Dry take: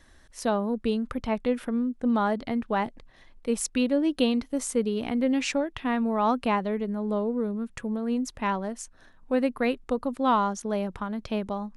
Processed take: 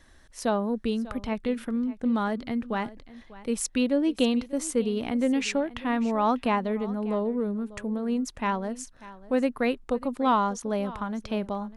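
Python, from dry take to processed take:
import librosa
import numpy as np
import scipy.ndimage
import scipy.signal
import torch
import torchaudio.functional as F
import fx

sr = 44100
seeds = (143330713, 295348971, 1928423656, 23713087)

y = fx.dynamic_eq(x, sr, hz=710.0, q=0.89, threshold_db=-39.0, ratio=4.0, max_db=-5, at=(0.75, 3.58))
y = y + 10.0 ** (-18.0 / 20.0) * np.pad(y, (int(594 * sr / 1000.0), 0))[:len(y)]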